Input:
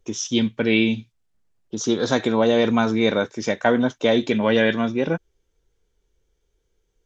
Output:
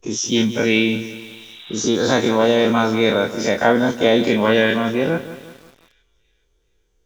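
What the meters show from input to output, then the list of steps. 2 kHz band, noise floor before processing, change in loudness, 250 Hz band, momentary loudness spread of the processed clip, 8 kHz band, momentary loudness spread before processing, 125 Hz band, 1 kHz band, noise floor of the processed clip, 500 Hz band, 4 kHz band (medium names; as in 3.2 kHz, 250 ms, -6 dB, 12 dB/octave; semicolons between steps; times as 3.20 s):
+4.5 dB, -71 dBFS, +3.5 dB, +2.0 dB, 13 LU, no reading, 7 LU, +2.5 dB, +4.5 dB, -65 dBFS, +3.5 dB, +4.5 dB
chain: every event in the spectrogram widened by 60 ms; feedback echo behind a high-pass 425 ms, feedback 37%, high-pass 3.6 kHz, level -16 dB; spectral replace 1.26–1.80 s, 660–4000 Hz both; bit-crushed delay 177 ms, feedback 55%, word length 6-bit, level -13 dB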